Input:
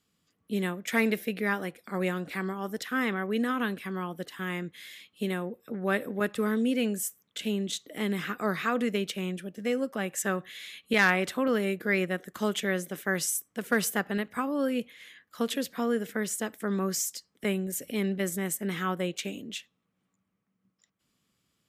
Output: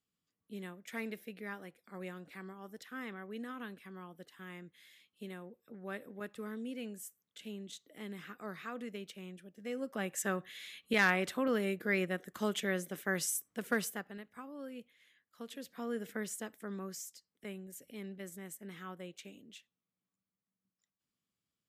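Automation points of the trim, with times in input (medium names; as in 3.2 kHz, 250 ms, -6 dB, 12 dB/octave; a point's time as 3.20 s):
9.54 s -15 dB
9.99 s -5.5 dB
13.70 s -5.5 dB
14.16 s -17.5 dB
15.44 s -17.5 dB
16.10 s -7.5 dB
17.14 s -16 dB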